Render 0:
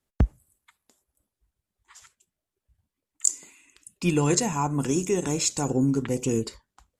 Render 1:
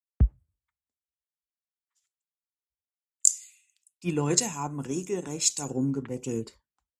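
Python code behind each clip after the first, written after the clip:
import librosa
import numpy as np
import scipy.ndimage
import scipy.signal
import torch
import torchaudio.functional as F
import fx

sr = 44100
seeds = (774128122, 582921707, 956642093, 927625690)

y = scipy.signal.sosfilt(scipy.signal.butter(2, 46.0, 'highpass', fs=sr, output='sos'), x)
y = fx.band_widen(y, sr, depth_pct=100)
y = F.gain(torch.from_numpy(y), -6.5).numpy()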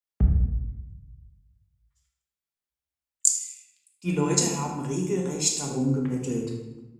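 y = fx.echo_feedback(x, sr, ms=79, feedback_pct=46, wet_db=-14.0)
y = fx.room_shoebox(y, sr, seeds[0], volume_m3=410.0, walls='mixed', distance_m=1.3)
y = F.gain(torch.from_numpy(y), -1.0).numpy()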